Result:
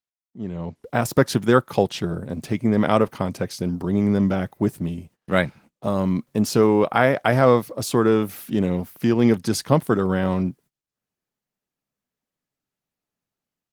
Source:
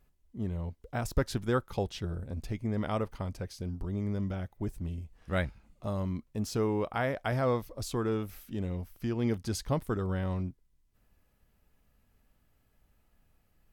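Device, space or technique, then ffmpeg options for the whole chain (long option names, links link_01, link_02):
video call: -af "highpass=frequency=130:width=0.5412,highpass=frequency=130:width=1.3066,dynaudnorm=framelen=390:gausssize=3:maxgain=16dB,agate=range=-29dB:threshold=-46dB:ratio=16:detection=peak" -ar 48000 -c:a libopus -b:a 20k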